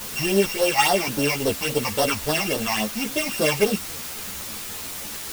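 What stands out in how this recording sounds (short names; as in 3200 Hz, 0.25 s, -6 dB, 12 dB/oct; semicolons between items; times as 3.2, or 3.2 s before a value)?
a buzz of ramps at a fixed pitch in blocks of 16 samples; phasing stages 8, 3.6 Hz, lowest notch 420–2400 Hz; a quantiser's noise floor 6-bit, dither triangular; a shimmering, thickened sound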